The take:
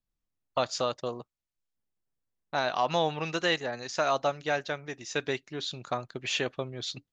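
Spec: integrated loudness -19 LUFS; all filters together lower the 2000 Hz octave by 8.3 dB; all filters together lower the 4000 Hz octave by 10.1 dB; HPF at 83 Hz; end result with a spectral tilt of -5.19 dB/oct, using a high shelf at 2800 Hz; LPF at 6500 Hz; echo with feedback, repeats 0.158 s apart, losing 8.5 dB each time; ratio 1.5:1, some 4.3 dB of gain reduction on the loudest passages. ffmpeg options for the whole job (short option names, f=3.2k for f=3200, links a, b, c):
-af "highpass=83,lowpass=6.5k,equalizer=f=2k:t=o:g=-8,highshelf=f=2.8k:g=-5,equalizer=f=4k:t=o:g=-5.5,acompressor=threshold=-35dB:ratio=1.5,aecho=1:1:158|316|474|632:0.376|0.143|0.0543|0.0206,volume=17.5dB"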